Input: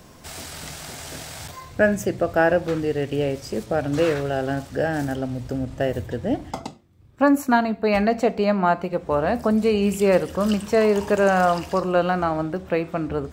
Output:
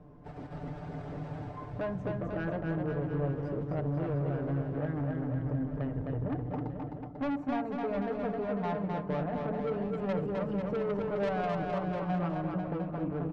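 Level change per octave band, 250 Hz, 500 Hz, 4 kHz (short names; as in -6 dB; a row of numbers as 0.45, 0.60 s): -10.0, -13.0, -19.5 dB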